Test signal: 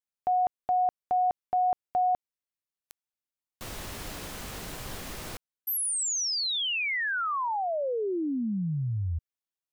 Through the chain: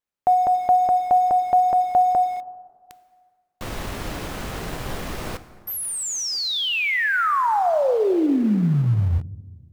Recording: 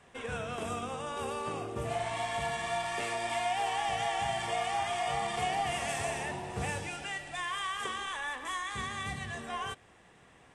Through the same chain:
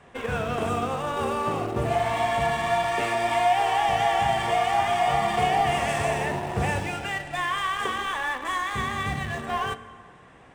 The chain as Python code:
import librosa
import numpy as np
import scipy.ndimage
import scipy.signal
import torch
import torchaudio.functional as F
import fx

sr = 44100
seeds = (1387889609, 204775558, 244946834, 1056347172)

p1 = fx.rev_plate(x, sr, seeds[0], rt60_s=1.9, hf_ratio=0.6, predelay_ms=0, drr_db=10.5)
p2 = fx.quant_dither(p1, sr, seeds[1], bits=6, dither='none')
p3 = p1 + (p2 * librosa.db_to_amplitude(-11.5))
p4 = fx.high_shelf(p3, sr, hz=3300.0, db=-10.0)
y = p4 * librosa.db_to_amplitude(8.0)